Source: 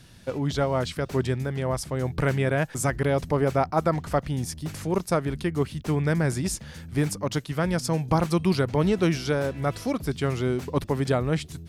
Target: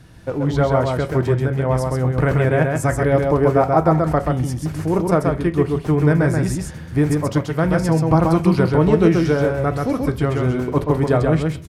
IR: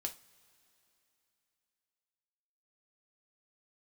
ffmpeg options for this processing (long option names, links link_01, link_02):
-filter_complex "[0:a]aecho=1:1:132:0.668,asplit=2[link_01][link_02];[1:a]atrim=start_sample=2205,afade=type=out:start_time=0.36:duration=0.01,atrim=end_sample=16317,lowpass=2100[link_03];[link_02][link_03]afir=irnorm=-1:irlink=0,volume=5.5dB[link_04];[link_01][link_04]amix=inputs=2:normalize=0,volume=-1.5dB"